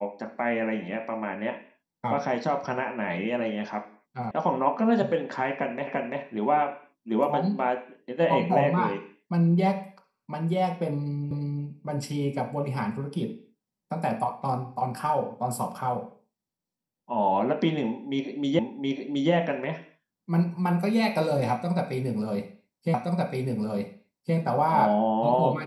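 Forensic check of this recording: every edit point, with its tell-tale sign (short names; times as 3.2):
4.31 sound cut off
5.87 repeat of the last 0.34 s
11.31 repeat of the last 0.35 s
18.59 repeat of the last 0.72 s
22.94 repeat of the last 1.42 s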